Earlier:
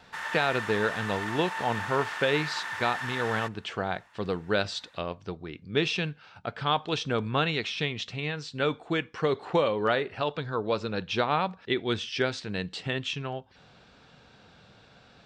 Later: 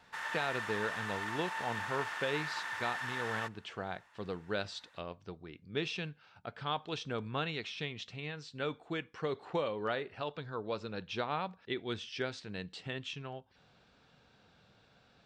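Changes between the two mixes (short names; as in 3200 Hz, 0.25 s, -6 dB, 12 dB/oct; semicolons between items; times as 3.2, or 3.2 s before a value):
speech -9.5 dB; background -4.5 dB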